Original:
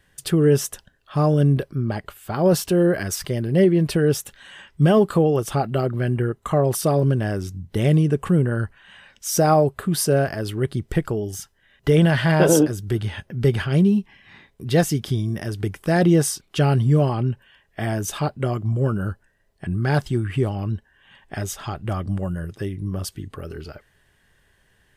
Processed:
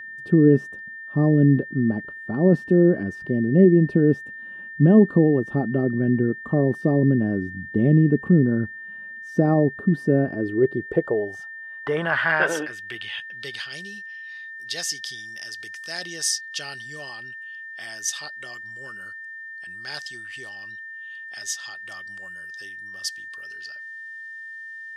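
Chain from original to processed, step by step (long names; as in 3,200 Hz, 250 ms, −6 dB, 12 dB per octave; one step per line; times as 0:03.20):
band-pass filter sweep 250 Hz → 5,300 Hz, 0:10.22–0:13.79
steady tone 1,800 Hz −43 dBFS
level +8 dB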